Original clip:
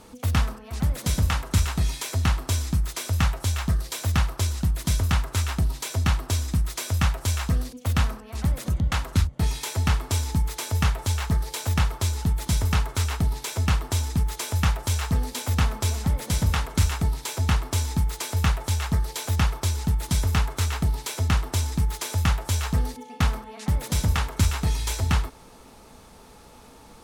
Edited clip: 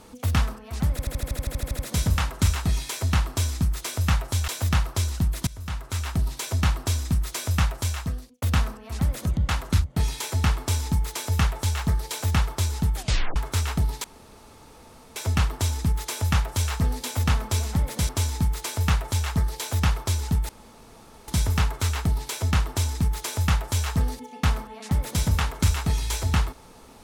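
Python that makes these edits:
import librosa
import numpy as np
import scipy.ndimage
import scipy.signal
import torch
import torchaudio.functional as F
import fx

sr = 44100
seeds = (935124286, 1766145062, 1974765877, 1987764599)

y = fx.edit(x, sr, fx.stutter(start_s=0.91, slice_s=0.08, count=12),
    fx.cut(start_s=3.6, length_s=0.31),
    fx.fade_in_from(start_s=4.9, length_s=0.81, floor_db=-23.0),
    fx.fade_out_span(start_s=6.92, length_s=0.93, curve='qsin'),
    fx.tape_stop(start_s=12.38, length_s=0.41),
    fx.insert_room_tone(at_s=13.47, length_s=1.12),
    fx.cut(start_s=16.4, length_s=1.25),
    fx.insert_room_tone(at_s=20.05, length_s=0.79), tone=tone)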